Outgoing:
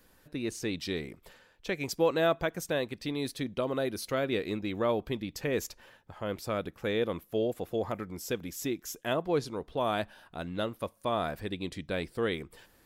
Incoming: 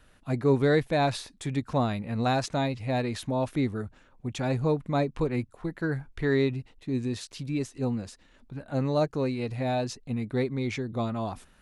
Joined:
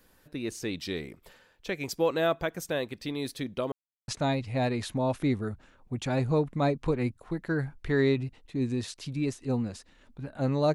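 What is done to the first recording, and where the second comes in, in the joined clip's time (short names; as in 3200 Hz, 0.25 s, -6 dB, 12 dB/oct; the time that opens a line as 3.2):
outgoing
3.72–4.08 mute
4.08 switch to incoming from 2.41 s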